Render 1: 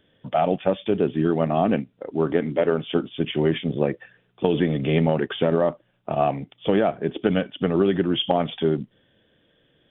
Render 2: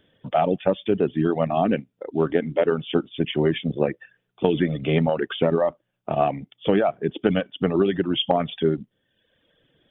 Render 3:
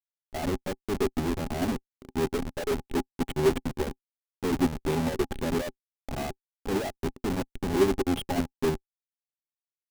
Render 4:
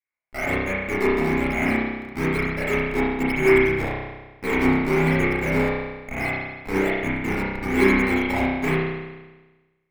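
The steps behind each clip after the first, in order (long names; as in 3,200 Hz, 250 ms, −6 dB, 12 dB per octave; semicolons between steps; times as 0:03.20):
reverb reduction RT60 0.89 s; level +1 dB
comparator with hysteresis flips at −24 dBFS; hollow resonant body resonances 260/380/820 Hz, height 10 dB, ringing for 80 ms; expander for the loud parts 2.5 to 1, over −34 dBFS
low-pass with resonance 2,200 Hz, resonance Q 13; in parallel at −4 dB: sample-and-hold swept by an LFO 10×, swing 100% 1.1 Hz; on the sum: convolution reverb RT60 1.2 s, pre-delay 31 ms, DRR −7.5 dB; level −7 dB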